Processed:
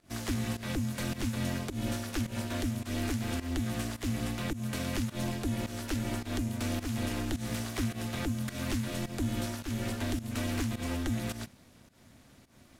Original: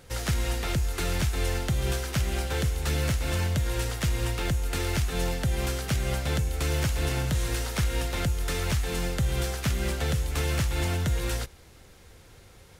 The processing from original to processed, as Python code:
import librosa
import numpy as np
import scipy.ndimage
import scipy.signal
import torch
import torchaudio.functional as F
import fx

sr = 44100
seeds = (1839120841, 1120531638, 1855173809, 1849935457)

y = fx.volume_shaper(x, sr, bpm=106, per_beat=1, depth_db=-16, release_ms=160.0, shape='fast start')
y = y * np.sin(2.0 * np.pi * 170.0 * np.arange(len(y)) / sr)
y = y * librosa.db_to_amplitude(-3.0)